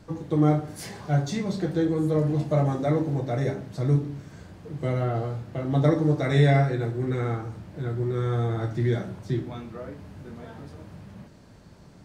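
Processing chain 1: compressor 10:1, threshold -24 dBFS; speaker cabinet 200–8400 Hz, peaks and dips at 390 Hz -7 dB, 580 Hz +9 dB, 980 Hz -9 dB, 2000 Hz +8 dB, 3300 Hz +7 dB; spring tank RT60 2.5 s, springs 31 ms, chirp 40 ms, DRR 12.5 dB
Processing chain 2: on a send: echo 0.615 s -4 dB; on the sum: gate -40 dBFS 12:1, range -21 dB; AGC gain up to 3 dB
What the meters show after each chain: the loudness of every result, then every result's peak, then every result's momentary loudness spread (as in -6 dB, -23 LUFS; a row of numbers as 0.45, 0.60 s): -32.0, -22.0 LUFS; -14.0, -5.5 dBFS; 16, 12 LU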